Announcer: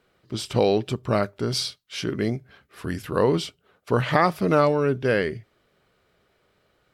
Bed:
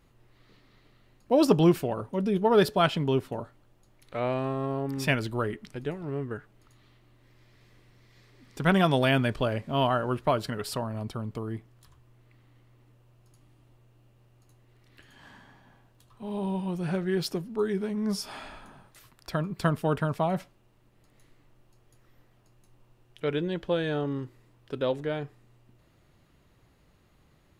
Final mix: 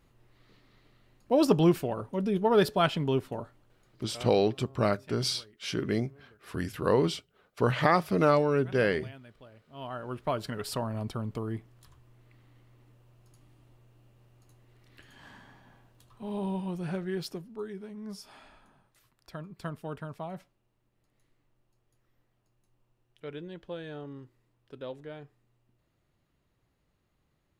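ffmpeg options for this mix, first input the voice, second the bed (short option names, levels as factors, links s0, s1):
-filter_complex "[0:a]adelay=3700,volume=0.631[s0];[1:a]volume=15,afade=t=out:st=3.58:d=0.82:silence=0.0668344,afade=t=in:st=9.7:d=1.19:silence=0.0530884,afade=t=out:st=15.99:d=1.76:silence=0.251189[s1];[s0][s1]amix=inputs=2:normalize=0"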